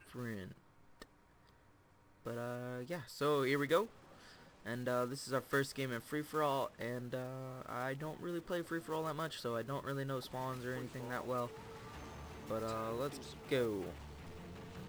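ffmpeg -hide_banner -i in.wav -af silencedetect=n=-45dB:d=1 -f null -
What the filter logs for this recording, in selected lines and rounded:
silence_start: 1.02
silence_end: 2.26 | silence_duration: 1.24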